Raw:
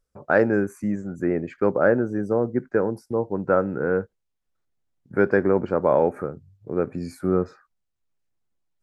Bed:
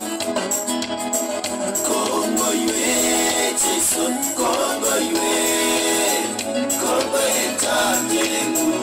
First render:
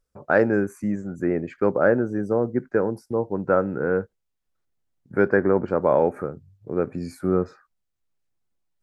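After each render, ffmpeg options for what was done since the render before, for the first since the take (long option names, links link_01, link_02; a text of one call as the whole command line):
ffmpeg -i in.wav -filter_complex "[0:a]asettb=1/sr,asplit=3[link_01][link_02][link_03];[link_01]atrim=end=5.284[link_04];[link_02]atrim=start=5.28:end=5.68,asetpts=PTS-STARTPTS,afade=type=in:duration=0.004:curve=qsin,afade=type=out:start_time=0.396:duration=0.004:curve=qsin,highshelf=frequency=2300:width_type=q:width=1.5:gain=-6[link_05];[link_03]atrim=start=5.676[link_06];[link_04][link_05]acrossfade=duration=0.004:curve1=hsin:curve2=qsin[link_07];[link_07][link_06]acrossfade=duration=0.004:curve1=qsin:curve2=hsin" out.wav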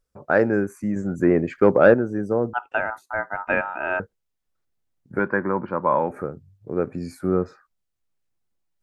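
ffmpeg -i in.wav -filter_complex "[0:a]asettb=1/sr,asplit=3[link_01][link_02][link_03];[link_01]atrim=end=0.964[link_04];[link_02]atrim=start=0.96:end=1.94,asetpts=PTS-STARTPTS,afade=type=in:duration=0.004:curve=qsin,afade=type=out:start_time=0.976:duration=0.004:curve=qsin,acontrast=48[link_05];[link_03]atrim=start=1.936[link_06];[link_04][link_05]acrossfade=duration=0.004:curve1=hsin:curve2=qsin[link_07];[link_07][link_06]acrossfade=duration=0.004:curve1=qsin:curve2=hsin,asettb=1/sr,asplit=3[link_08][link_09][link_10];[link_08]atrim=end=2.534[link_11];[link_09]atrim=start=2.53:end=4,asetpts=PTS-STARTPTS,afade=type=in:duration=0.004:curve=qsin,afade=type=out:start_time=1.466:duration=0.004:curve=qsin,aeval=exprs='val(0)*sin(2*PI*1100*n/s)':channel_layout=same[link_12];[link_10]atrim=start=3.996[link_13];[link_11][link_12]acrossfade=duration=0.004:curve1=hsin:curve2=qsin[link_14];[link_14][link_13]acrossfade=duration=0.004:curve1=qsin:curve2=hsin,asettb=1/sr,asplit=3[link_15][link_16][link_17];[link_15]atrim=end=5.194[link_18];[link_16]atrim=start=5.19:end=6.1,asetpts=PTS-STARTPTS,afade=type=in:duration=0.004:curve=qsin,afade=type=out:start_time=0.906:duration=0.004:curve=qsin,highpass=140,equalizer=frequency=280:width_type=q:width=4:gain=-4,equalizer=frequency=430:width_type=q:width=4:gain=-10,equalizer=frequency=700:width_type=q:width=4:gain=-7,equalizer=frequency=1000:width_type=q:width=4:gain=9,lowpass=frequency=3800:width=0.5412,lowpass=frequency=3800:width=1.3066[link_19];[link_17]atrim=start=6.096[link_20];[link_18][link_19]acrossfade=duration=0.004:curve1=hsin:curve2=qsin[link_21];[link_21][link_20]acrossfade=duration=0.004:curve1=qsin:curve2=hsin" out.wav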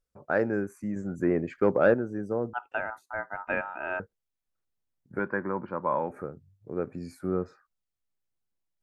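ffmpeg -i in.wav -af "volume=-7.5dB" out.wav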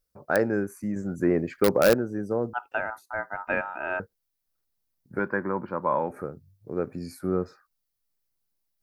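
ffmpeg -i in.wav -filter_complex "[0:a]asplit=2[link_01][link_02];[link_02]aeval=exprs='(mod(4.47*val(0)+1,2)-1)/4.47':channel_layout=same,volume=-9.5dB[link_03];[link_01][link_03]amix=inputs=2:normalize=0,aexciter=amount=1.6:drive=6:freq=4200" out.wav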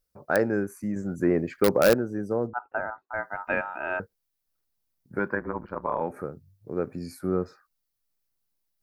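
ffmpeg -i in.wav -filter_complex "[0:a]asettb=1/sr,asplit=3[link_01][link_02][link_03];[link_01]atrim=end=2.474[link_04];[link_02]atrim=start=2.47:end=3.14,asetpts=PTS-STARTPTS,afade=type=in:duration=0.004:curve=qsin,afade=type=out:start_time=0.666:duration=0.004:curve=qsin,lowpass=frequency=1600:width=0.5412,lowpass=frequency=1600:width=1.3066[link_05];[link_03]atrim=start=3.136[link_06];[link_04][link_05]acrossfade=duration=0.004:curve1=hsin:curve2=qsin[link_07];[link_07][link_06]acrossfade=duration=0.004:curve1=qsin:curve2=hsin,asettb=1/sr,asplit=3[link_08][link_09][link_10];[link_08]atrim=end=5.354[link_11];[link_09]atrim=start=5.35:end=6.01,asetpts=PTS-STARTPTS,afade=type=in:duration=0.004:curve=qsin,afade=type=out:start_time=0.656:duration=0.004:curve=qsin,tremolo=f=110:d=0.889[link_12];[link_10]atrim=start=6.006[link_13];[link_11][link_12]acrossfade=duration=0.004:curve1=hsin:curve2=qsin[link_14];[link_14][link_13]acrossfade=duration=0.004:curve1=qsin:curve2=hsin" out.wav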